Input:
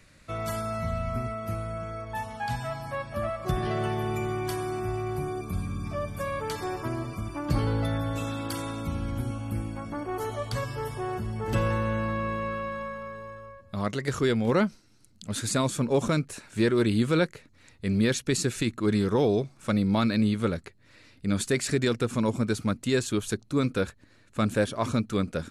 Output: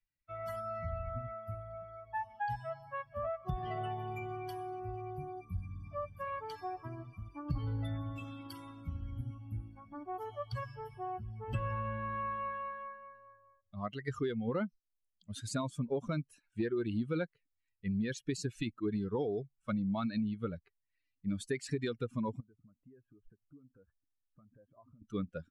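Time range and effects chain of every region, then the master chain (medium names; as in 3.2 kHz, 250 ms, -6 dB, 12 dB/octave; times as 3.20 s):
22.40–25.02 s: Gaussian low-pass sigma 4.8 samples + compression 16:1, threshold -36 dBFS
whole clip: expander on every frequency bin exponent 2; low-pass 2.5 kHz 6 dB/octave; compression, threshold -31 dBFS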